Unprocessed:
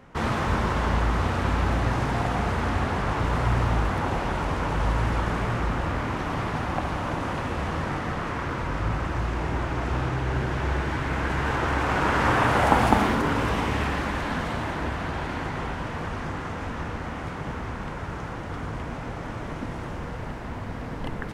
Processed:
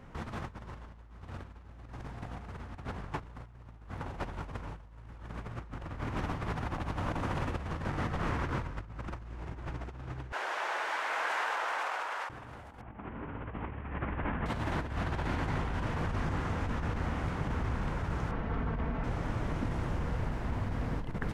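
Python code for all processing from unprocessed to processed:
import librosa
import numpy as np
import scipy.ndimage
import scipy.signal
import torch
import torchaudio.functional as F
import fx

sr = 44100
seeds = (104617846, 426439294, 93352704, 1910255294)

y = fx.chain(x, sr, fx.highpass(hz=600.0, slope=24),
    fx.over_compress(threshold_db=-30.0, ratio=-1.0), at=(10.32, 12.3))
y = fx.chain(y, sr, fx.cvsd(bps=16000),
    fx.lowpass(hz=2500.0, slope=12), at=(12.81, 14.46))
y = fx.chain(y, sr, fx.lowpass(hz=2600.0, slope=12),
    fx.comb(ms=4.5, depth=0.46), at=(18.31, 19.04))
y = fx.low_shelf(y, sr, hz=140.0, db=8.5)
y = fx.over_compress(y, sr, threshold_db=-27.0, ratio=-0.5)
y = F.gain(torch.from_numpy(y), -8.5).numpy()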